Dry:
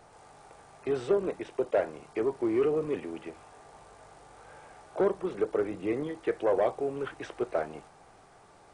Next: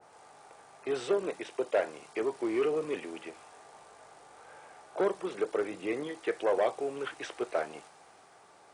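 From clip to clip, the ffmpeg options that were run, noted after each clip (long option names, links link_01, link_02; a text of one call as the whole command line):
ffmpeg -i in.wav -af "highpass=frequency=380:poles=1,adynamicequalizer=threshold=0.00355:dfrequency=1900:dqfactor=0.7:tfrequency=1900:tqfactor=0.7:attack=5:release=100:ratio=0.375:range=3:mode=boostabove:tftype=highshelf" out.wav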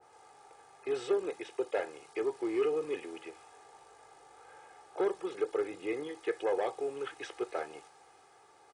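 ffmpeg -i in.wav -af "aecho=1:1:2.4:0.55,volume=-4.5dB" out.wav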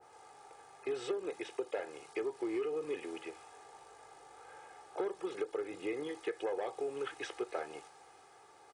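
ffmpeg -i in.wav -af "acompressor=threshold=-34dB:ratio=6,volume=1dB" out.wav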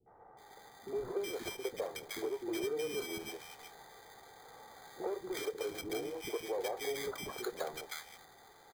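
ffmpeg -i in.wav -filter_complex "[0:a]acrusher=samples=16:mix=1:aa=0.000001,acrossover=split=320|1300[link_01][link_02][link_03];[link_02]adelay=60[link_04];[link_03]adelay=370[link_05];[link_01][link_04][link_05]amix=inputs=3:normalize=0,volume=1.5dB" out.wav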